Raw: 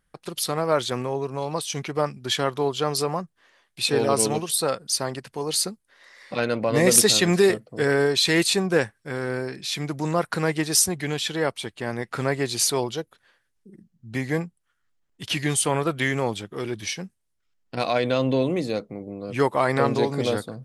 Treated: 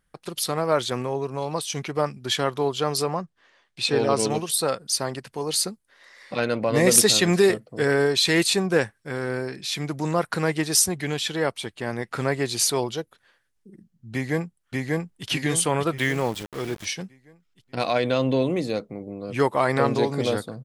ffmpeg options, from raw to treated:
-filter_complex "[0:a]asettb=1/sr,asplit=3[a][b][c];[a]atrim=end=3.084[d];[b]atrim=start=3.08:end=4.3,asetpts=PTS-STARTPTS,afade=t=in:d=0.004:c=qsin,afade=t=out:st=1.216:d=0.004:c=qsin,lowpass=6.8k[e];[c]atrim=start=4.296[f];[d][e]acrossfade=d=0.004:c1=hsin:c2=qsin[g];[g][f]acrossfade=d=0.004:c1=qsin:c2=hsin,asplit=2[h][i];[i]afade=t=in:st=14.13:d=0.01,afade=t=out:st=15.27:d=0.01,aecho=0:1:590|1180|1770|2360|2950|3540:0.944061|0.424827|0.191172|0.0860275|0.0387124|0.0174206[j];[h][j]amix=inputs=2:normalize=0,asettb=1/sr,asplit=3[k][l][m];[k]atrim=end=15.984[n];[l]atrim=start=15.98:end=16.85,asetpts=PTS-STARTPTS,afade=t=in:d=0.004:c=qsin,afade=t=out:st=0.866:d=0.004:c=qsin,aeval=exprs='val(0)*gte(abs(val(0)),0.0178)':c=same[o];[m]atrim=start=16.846[p];[n][o]acrossfade=d=0.004:c1=hsin:c2=qsin[q];[q][p]acrossfade=d=0.004:c1=qsin:c2=hsin"

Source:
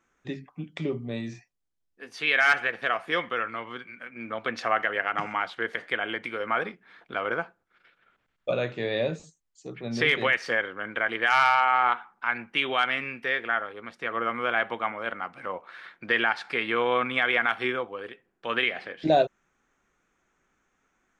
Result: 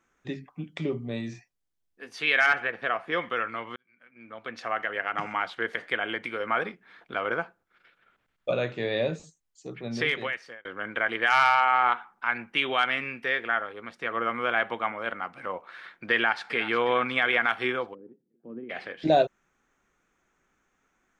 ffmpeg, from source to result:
-filter_complex "[0:a]asettb=1/sr,asplit=3[a][b][c];[a]atrim=end=2.464[d];[b]atrim=start=2.46:end=3.22,asetpts=PTS-STARTPTS,afade=t=in:d=0.004:c=qsin,afade=t=out:st=0.756:d=0.004:c=qsin,lowpass=f=2.2k:p=1[e];[c]atrim=start=3.216[f];[d][e]acrossfade=d=0.004:c1=hsin:c2=qsin[g];[g][f]acrossfade=d=0.004:c1=qsin:c2=hsin,asplit=2[h][i];[i]afade=t=in:st=16.14:d=0.01,afade=t=out:st=16.56:d=0.01,aecho=0:1:360|720|1080|1440|1800|2160:0.199526|0.119716|0.0718294|0.0430977|0.0258586|0.0155152[j];[h][j]amix=inputs=2:normalize=0,asplit=3[k][l][m];[k]afade=t=out:st=17.93:d=0.02[n];[l]asuperpass=centerf=220:order=4:qfactor=1.2,afade=t=in:st=17.93:d=0.02,afade=t=out:st=18.69:d=0.02[o];[m]afade=t=in:st=18.69:d=0.02[p];[n][o][p]amix=inputs=3:normalize=0,asplit=3[q][r][s];[q]atrim=end=3.76,asetpts=PTS-STARTPTS,afade=t=out:st=3.756:d=0.004:c=hsin[t];[r]atrim=start=3.76:end=10.65,asetpts=PTS-STARTPTS,afade=t=in:d=1.72,afade=t=out:st=6.01:d=0.88[u];[s]atrim=start=10.65,asetpts=PTS-STARTPTS,afade=t=in:d=0.004:c=hsin[v];[t][u][v]concat=n=3:v=0:a=1"

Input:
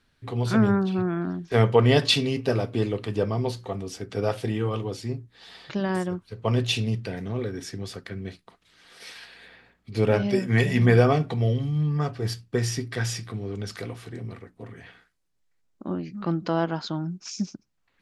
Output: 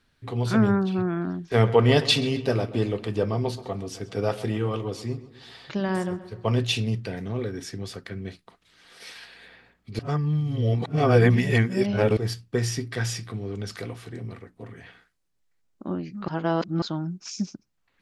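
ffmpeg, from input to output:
-filter_complex "[0:a]asettb=1/sr,asplit=3[a][b][c];[a]atrim=end=1.414[d];[b]atrim=start=1.41:end=6.59,asetpts=PTS-STARTPTS,afade=t=in:d=0.004:c=qsin,afade=t=out:st=5.176:d=0.004:c=qsin,asplit=2[e][f];[f]adelay=131,lowpass=f=3.9k:p=1,volume=-15dB,asplit=2[g][h];[h]adelay=131,lowpass=f=3.9k:p=1,volume=0.51,asplit=2[i][j];[j]adelay=131,lowpass=f=3.9k:p=1,volume=0.51,asplit=2[k][l];[l]adelay=131,lowpass=f=3.9k:p=1,volume=0.51,asplit=2[m][n];[n]adelay=131,lowpass=f=3.9k:p=1,volume=0.51[o];[e][g][i][k][m][o]amix=inputs=6:normalize=0,atrim=end_sample=228438[p];[c]atrim=start=6.586[q];[d][p]acrossfade=d=0.004:c1=hsin:c2=qsin[r];[r][q]acrossfade=d=0.004:c1=qsin:c2=hsin,asplit=5[s][t][u][v][w];[s]atrim=end=9.992[x];[t]atrim=start=9.988:end=12.172,asetpts=PTS-STARTPTS,areverse[y];[u]atrim=start=12.168:end=16.282[z];[v]atrim=start=16.278:end=16.822,asetpts=PTS-STARTPTS,areverse[aa];[w]atrim=start=16.818[ab];[x][y]acrossfade=d=0.004:c1=hsin:c2=hsin[ac];[ac][z]acrossfade=d=0.004:c1=hsin:c2=hsin[ad];[ad][aa]acrossfade=d=0.004:c1=hsin:c2=hsin[ae];[ae][ab]acrossfade=d=0.004:c1=hsin:c2=hsin"

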